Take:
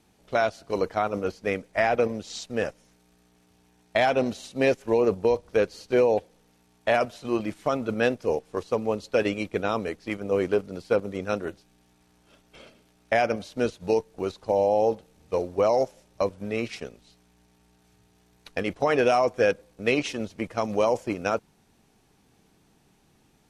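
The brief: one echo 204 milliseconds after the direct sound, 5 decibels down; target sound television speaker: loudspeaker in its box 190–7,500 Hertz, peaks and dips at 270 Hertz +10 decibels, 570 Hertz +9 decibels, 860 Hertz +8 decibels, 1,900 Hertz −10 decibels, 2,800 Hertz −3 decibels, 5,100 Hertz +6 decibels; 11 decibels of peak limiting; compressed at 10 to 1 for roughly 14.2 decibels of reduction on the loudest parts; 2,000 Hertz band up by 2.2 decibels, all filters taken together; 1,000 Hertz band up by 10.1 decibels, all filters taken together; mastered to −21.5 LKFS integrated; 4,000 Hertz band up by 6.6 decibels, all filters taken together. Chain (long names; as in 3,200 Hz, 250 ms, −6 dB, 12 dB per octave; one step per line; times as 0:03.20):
parametric band 1,000 Hz +6 dB
parametric band 2,000 Hz +4.5 dB
parametric band 4,000 Hz +6.5 dB
downward compressor 10 to 1, threshold −29 dBFS
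brickwall limiter −23.5 dBFS
loudspeaker in its box 190–7,500 Hz, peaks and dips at 270 Hz +10 dB, 570 Hz +9 dB, 860 Hz +8 dB, 1,900 Hz −10 dB, 2,800 Hz −3 dB, 5,100 Hz +6 dB
single-tap delay 204 ms −5 dB
level +10 dB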